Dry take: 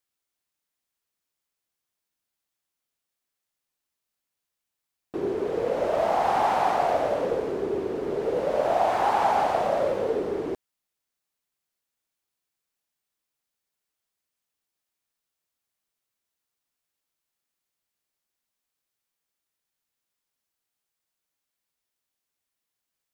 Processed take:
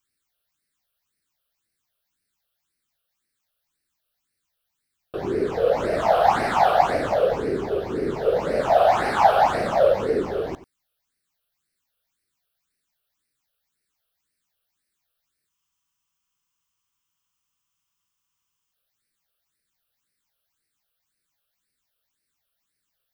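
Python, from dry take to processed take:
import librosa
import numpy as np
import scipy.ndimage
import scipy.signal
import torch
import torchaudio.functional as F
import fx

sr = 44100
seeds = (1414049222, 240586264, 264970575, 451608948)

p1 = fx.phaser_stages(x, sr, stages=8, low_hz=260.0, high_hz=1000.0, hz=1.9, feedback_pct=25)
p2 = p1 + fx.echo_single(p1, sr, ms=91, db=-15.5, dry=0)
p3 = fx.spec_freeze(p2, sr, seeds[0], at_s=15.51, hold_s=3.22)
y = p3 * 10.0 ** (8.0 / 20.0)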